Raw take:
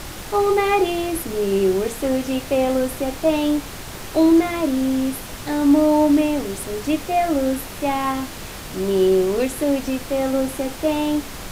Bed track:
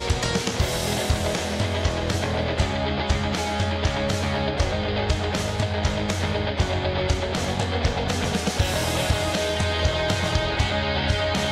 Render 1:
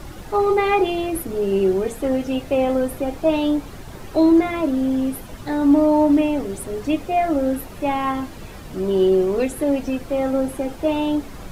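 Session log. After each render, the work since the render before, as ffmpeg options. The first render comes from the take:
ffmpeg -i in.wav -af "afftdn=noise_reduction=11:noise_floor=-34" out.wav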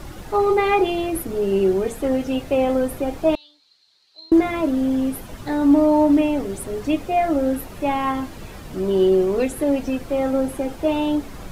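ffmpeg -i in.wav -filter_complex "[0:a]asettb=1/sr,asplit=3[link_01][link_02][link_03];[link_01]atrim=end=3.354[link_04];[link_02]atrim=start=3.35:end=4.32,asetpts=PTS-STARTPTS,afade=type=in:duration=0.004:curve=qsin,afade=type=out:start_time=0.966:duration=0.004:curve=qsin,bandpass=frequency=4200:width_type=q:width=11[link_05];[link_03]atrim=start=4.316[link_06];[link_04][link_05]acrossfade=duration=0.004:curve1=hsin:curve2=qsin[link_07];[link_07][link_06]acrossfade=duration=0.004:curve1=qsin:curve2=hsin" out.wav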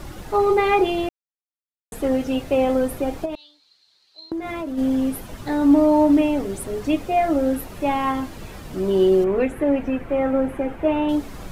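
ffmpeg -i in.wav -filter_complex "[0:a]asplit=3[link_01][link_02][link_03];[link_01]afade=type=out:start_time=3.24:duration=0.02[link_04];[link_02]acompressor=threshold=-25dB:ratio=8:attack=3.2:release=140:knee=1:detection=peak,afade=type=in:start_time=3.24:duration=0.02,afade=type=out:start_time=4.77:duration=0.02[link_05];[link_03]afade=type=in:start_time=4.77:duration=0.02[link_06];[link_04][link_05][link_06]amix=inputs=3:normalize=0,asettb=1/sr,asplit=3[link_07][link_08][link_09];[link_07]atrim=end=9.244[link_10];[link_08]atrim=start=9.24:end=11.09,asetpts=PTS-STARTPTS,afade=type=in:duration=0.004:curve=qsin,afade=type=out:start_time=1.846:duration=0.004:curve=qsin,highshelf=frequency=3200:width_type=q:width=1.5:gain=-13[link_11];[link_09]atrim=start=11.086[link_12];[link_10][link_11]acrossfade=duration=0.004:curve1=hsin:curve2=qsin[link_13];[link_13][link_12]acrossfade=duration=0.004:curve1=qsin:curve2=hsin,asplit=3[link_14][link_15][link_16];[link_14]atrim=end=1.09,asetpts=PTS-STARTPTS,afade=type=out:start_time=1.086:duration=0.004:curve=hsin[link_17];[link_15]atrim=start=1.09:end=1.92,asetpts=PTS-STARTPTS,volume=0[link_18];[link_16]atrim=start=1.92,asetpts=PTS-STARTPTS,afade=type=in:duration=0.004:curve=hsin[link_19];[link_17][link_18][link_19]concat=n=3:v=0:a=1" out.wav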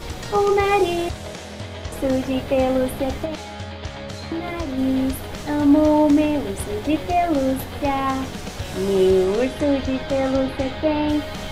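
ffmpeg -i in.wav -i bed.wav -filter_complex "[1:a]volume=-8.5dB[link_01];[0:a][link_01]amix=inputs=2:normalize=0" out.wav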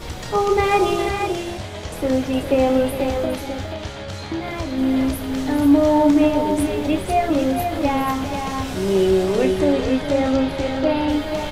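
ffmpeg -i in.wav -filter_complex "[0:a]asplit=2[link_01][link_02];[link_02]adelay=31,volume=-11dB[link_03];[link_01][link_03]amix=inputs=2:normalize=0,aecho=1:1:410|485:0.299|0.473" out.wav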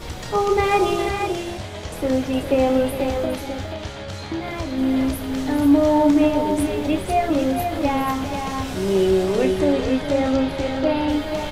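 ffmpeg -i in.wav -af "volume=-1dB" out.wav

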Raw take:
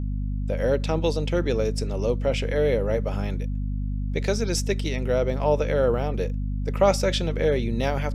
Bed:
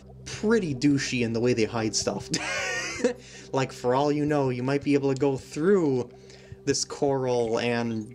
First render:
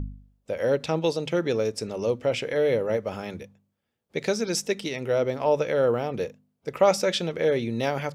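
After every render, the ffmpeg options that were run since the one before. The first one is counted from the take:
ffmpeg -i in.wav -af "bandreject=frequency=50:width_type=h:width=4,bandreject=frequency=100:width_type=h:width=4,bandreject=frequency=150:width_type=h:width=4,bandreject=frequency=200:width_type=h:width=4,bandreject=frequency=250:width_type=h:width=4" out.wav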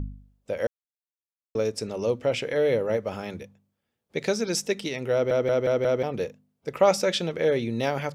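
ffmpeg -i in.wav -filter_complex "[0:a]asplit=8[link_01][link_02][link_03][link_04][link_05][link_06][link_07][link_08];[link_01]atrim=end=0.67,asetpts=PTS-STARTPTS,afade=type=out:start_time=0.666:duration=0.004:curve=hsin[link_09];[link_02]atrim=start=0.67:end=1.55,asetpts=PTS-STARTPTS,volume=0[link_10];[link_03]atrim=start=1.55:end=5.312,asetpts=PTS-STARTPTS,afade=type=in:duration=0.004:curve=hsin[link_11];[link_04]atrim=start=5.128:end=5.312[link_12];[link_05]atrim=start=5.128:end=5.312[link_13];[link_06]atrim=start=5.128:end=5.312[link_14];[link_07]atrim=start=5.128:end=5.312[link_15];[link_08]atrim=start=6.028[link_16];[link_09][link_10][link_11]concat=n=3:v=0:a=1[link_17];[link_17][link_12]acrossfade=duration=0.004:curve1=hsin:curve2=hsin[link_18];[link_18][link_13]acrossfade=duration=0.004:curve1=hsin:curve2=hsin[link_19];[link_19][link_14]acrossfade=duration=0.004:curve1=hsin:curve2=hsin[link_20];[link_20][link_15]acrossfade=duration=0.004:curve1=hsin:curve2=hsin[link_21];[link_21][link_16]acrossfade=duration=0.004:curve1=hsin:curve2=hsin" out.wav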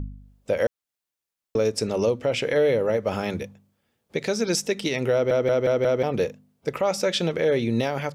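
ffmpeg -i in.wav -af "dynaudnorm=framelen=100:gausssize=5:maxgain=8.5dB,alimiter=limit=-13dB:level=0:latency=1:release=291" out.wav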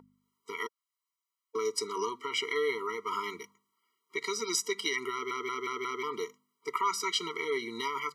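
ffmpeg -i in.wav -af "highpass=frequency=750:width_type=q:width=5.4,afftfilt=real='re*eq(mod(floor(b*sr/1024/470),2),0)':imag='im*eq(mod(floor(b*sr/1024/470),2),0)':win_size=1024:overlap=0.75" out.wav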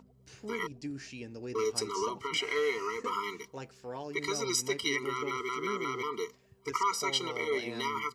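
ffmpeg -i in.wav -i bed.wav -filter_complex "[1:a]volume=-17.5dB[link_01];[0:a][link_01]amix=inputs=2:normalize=0" out.wav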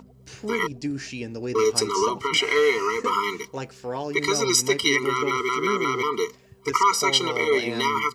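ffmpeg -i in.wav -af "volume=10.5dB" out.wav

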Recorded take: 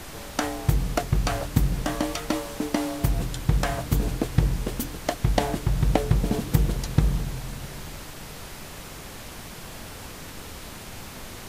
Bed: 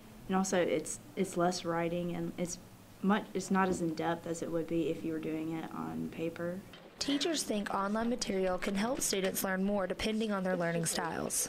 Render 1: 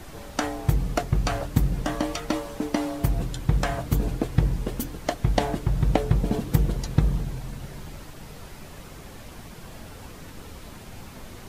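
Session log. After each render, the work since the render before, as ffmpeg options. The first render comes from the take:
ffmpeg -i in.wav -af "afftdn=noise_reduction=7:noise_floor=-40" out.wav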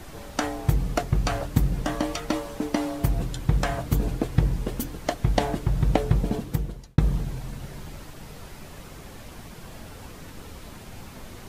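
ffmpeg -i in.wav -filter_complex "[0:a]asplit=2[link_01][link_02];[link_01]atrim=end=6.98,asetpts=PTS-STARTPTS,afade=type=out:start_time=6.18:duration=0.8[link_03];[link_02]atrim=start=6.98,asetpts=PTS-STARTPTS,afade=type=in:duration=0.004:curve=hsin[link_04];[link_03][link_04]concat=n=2:v=0:a=1" out.wav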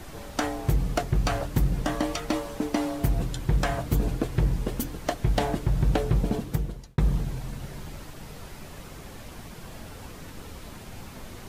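ffmpeg -i in.wav -af "asoftclip=type=hard:threshold=-15.5dB" out.wav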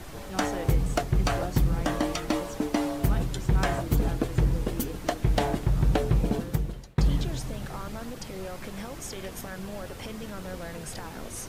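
ffmpeg -i in.wav -i bed.wav -filter_complex "[1:a]volume=-6.5dB[link_01];[0:a][link_01]amix=inputs=2:normalize=0" out.wav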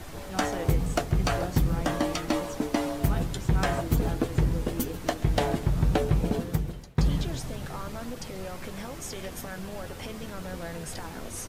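ffmpeg -i in.wav -filter_complex "[0:a]asplit=2[link_01][link_02];[link_02]adelay=12,volume=-10.5dB[link_03];[link_01][link_03]amix=inputs=2:normalize=0,aecho=1:1:136|272|408:0.106|0.0413|0.0161" out.wav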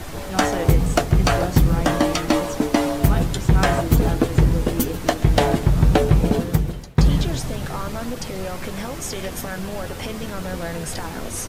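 ffmpeg -i in.wav -af "volume=8.5dB" out.wav

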